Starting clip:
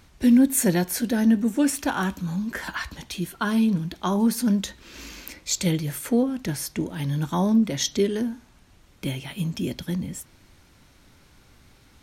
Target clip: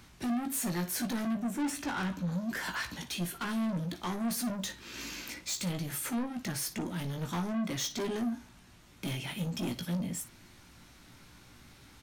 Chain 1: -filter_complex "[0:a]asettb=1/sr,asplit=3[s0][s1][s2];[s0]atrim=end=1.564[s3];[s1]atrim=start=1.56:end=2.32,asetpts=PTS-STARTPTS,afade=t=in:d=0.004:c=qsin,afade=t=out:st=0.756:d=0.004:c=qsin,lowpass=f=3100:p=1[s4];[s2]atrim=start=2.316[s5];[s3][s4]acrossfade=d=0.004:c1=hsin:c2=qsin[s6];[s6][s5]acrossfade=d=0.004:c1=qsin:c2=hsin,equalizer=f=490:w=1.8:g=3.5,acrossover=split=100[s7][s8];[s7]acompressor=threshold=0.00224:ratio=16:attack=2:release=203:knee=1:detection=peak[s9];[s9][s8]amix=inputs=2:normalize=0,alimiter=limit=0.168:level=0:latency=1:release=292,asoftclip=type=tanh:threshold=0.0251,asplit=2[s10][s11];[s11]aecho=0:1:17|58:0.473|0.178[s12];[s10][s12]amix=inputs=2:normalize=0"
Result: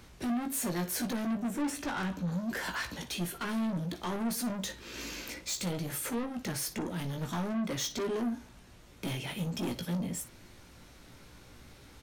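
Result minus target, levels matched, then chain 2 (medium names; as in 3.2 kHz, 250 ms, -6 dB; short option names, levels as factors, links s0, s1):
compression: peak gain reduction -6 dB; 500 Hz band +2.5 dB
-filter_complex "[0:a]asettb=1/sr,asplit=3[s0][s1][s2];[s0]atrim=end=1.564[s3];[s1]atrim=start=1.56:end=2.32,asetpts=PTS-STARTPTS,afade=t=in:d=0.004:c=qsin,afade=t=out:st=0.756:d=0.004:c=qsin,lowpass=f=3100:p=1[s4];[s2]atrim=start=2.316[s5];[s3][s4]acrossfade=d=0.004:c1=hsin:c2=qsin[s6];[s6][s5]acrossfade=d=0.004:c1=qsin:c2=hsin,equalizer=f=490:w=1.8:g=-4.5,acrossover=split=100[s7][s8];[s7]acompressor=threshold=0.00106:ratio=16:attack=2:release=203:knee=1:detection=peak[s9];[s9][s8]amix=inputs=2:normalize=0,alimiter=limit=0.168:level=0:latency=1:release=292,asoftclip=type=tanh:threshold=0.0251,asplit=2[s10][s11];[s11]aecho=0:1:17|58:0.473|0.178[s12];[s10][s12]amix=inputs=2:normalize=0"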